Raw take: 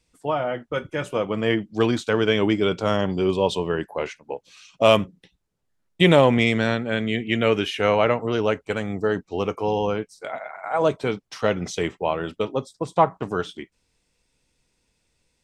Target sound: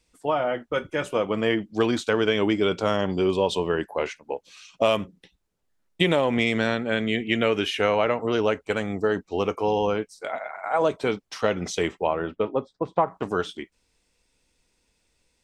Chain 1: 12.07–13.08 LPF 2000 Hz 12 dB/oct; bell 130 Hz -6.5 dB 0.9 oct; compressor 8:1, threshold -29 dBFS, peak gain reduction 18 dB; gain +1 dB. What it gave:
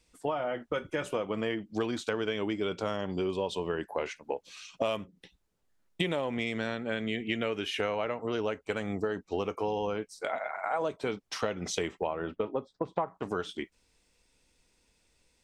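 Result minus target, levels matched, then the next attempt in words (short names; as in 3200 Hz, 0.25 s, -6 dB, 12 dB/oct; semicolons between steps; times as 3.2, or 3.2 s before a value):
compressor: peak gain reduction +10 dB
12.07–13.08 LPF 2000 Hz 12 dB/oct; bell 130 Hz -6.5 dB 0.9 oct; compressor 8:1, threshold -17.5 dBFS, peak gain reduction 8 dB; gain +1 dB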